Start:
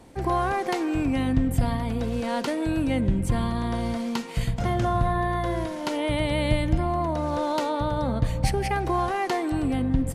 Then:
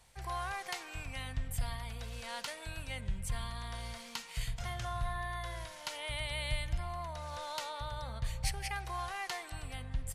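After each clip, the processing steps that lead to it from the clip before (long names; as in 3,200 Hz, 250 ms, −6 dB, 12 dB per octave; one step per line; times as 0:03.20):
guitar amp tone stack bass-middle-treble 10-0-10
level −3 dB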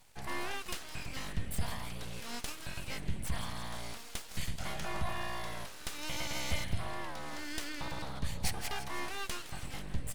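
delay with a high-pass on its return 164 ms, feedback 64%, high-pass 2,800 Hz, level −13 dB
full-wave rectification
level +3 dB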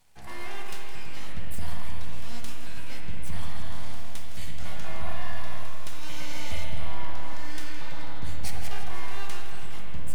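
tuned comb filter 81 Hz, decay 0.95 s, harmonics all, mix 70%
spring reverb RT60 3.3 s, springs 50/60 ms, chirp 70 ms, DRR 0.5 dB
level +6 dB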